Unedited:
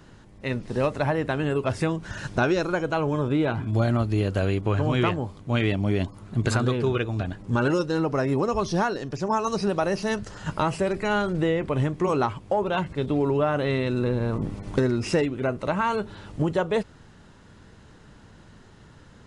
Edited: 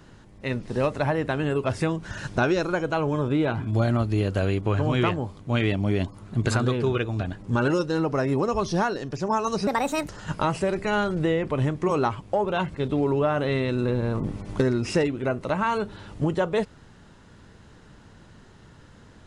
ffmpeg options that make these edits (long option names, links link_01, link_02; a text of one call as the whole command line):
ffmpeg -i in.wav -filter_complex "[0:a]asplit=3[link_01][link_02][link_03];[link_01]atrim=end=9.674[link_04];[link_02]atrim=start=9.67:end=10.27,asetpts=PTS-STARTPTS,asetrate=63063,aresample=44100,atrim=end_sample=18503,asetpts=PTS-STARTPTS[link_05];[link_03]atrim=start=10.266[link_06];[link_04][link_05]acrossfade=duration=0.004:curve1=hsin:curve2=hsin[link_07];[link_07][link_06]acrossfade=duration=0.004:curve1=hsin:curve2=hsin" out.wav